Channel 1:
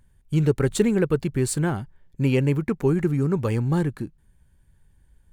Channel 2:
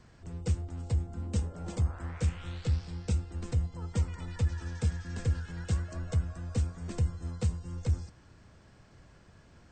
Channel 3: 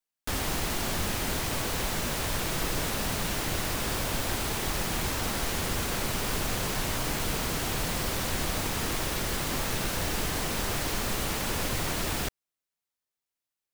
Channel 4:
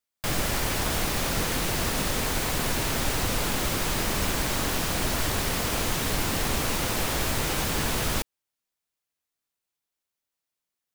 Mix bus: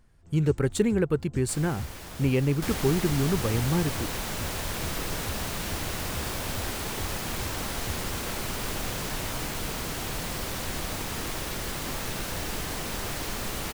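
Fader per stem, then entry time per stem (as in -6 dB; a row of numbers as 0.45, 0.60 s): -3.5, -10.0, -2.5, -15.0 dB; 0.00, 0.00, 2.35, 1.25 s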